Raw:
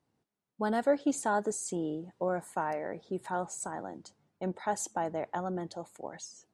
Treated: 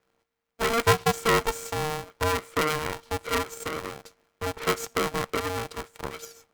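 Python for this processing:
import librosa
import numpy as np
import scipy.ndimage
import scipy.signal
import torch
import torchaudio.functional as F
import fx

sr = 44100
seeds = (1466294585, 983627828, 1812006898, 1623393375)

y = fx.graphic_eq_15(x, sr, hz=(160, 1600, 10000), db=(-8, 8, -12))
y = np.maximum(y, 0.0)
y = y * np.sign(np.sin(2.0 * np.pi * 460.0 * np.arange(len(y)) / sr))
y = F.gain(torch.from_numpy(y), 9.0).numpy()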